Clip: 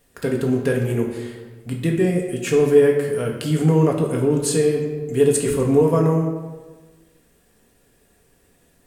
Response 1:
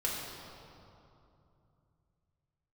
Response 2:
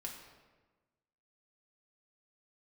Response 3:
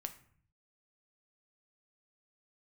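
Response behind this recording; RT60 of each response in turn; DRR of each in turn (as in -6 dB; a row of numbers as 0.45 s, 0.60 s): 2; 2.8 s, 1.3 s, 0.55 s; -5.5 dB, -0.5 dB, 6.5 dB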